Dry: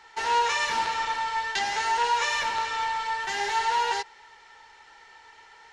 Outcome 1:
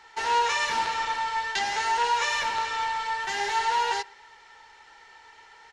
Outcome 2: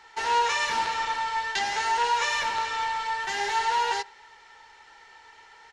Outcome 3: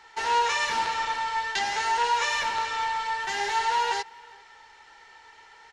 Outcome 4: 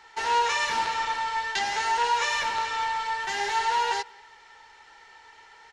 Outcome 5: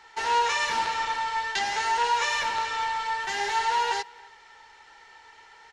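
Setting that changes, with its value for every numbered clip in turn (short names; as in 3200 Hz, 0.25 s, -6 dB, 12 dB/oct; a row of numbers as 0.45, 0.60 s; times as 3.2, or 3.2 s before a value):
speakerphone echo, time: 120, 80, 400, 180, 270 ms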